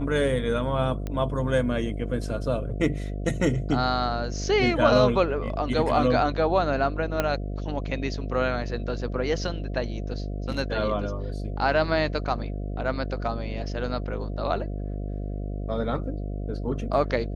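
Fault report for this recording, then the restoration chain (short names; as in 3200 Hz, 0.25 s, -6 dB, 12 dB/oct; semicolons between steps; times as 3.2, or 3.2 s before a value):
buzz 50 Hz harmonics 14 -31 dBFS
1.07 pop -19 dBFS
7.2 pop -9 dBFS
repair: de-click; de-hum 50 Hz, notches 14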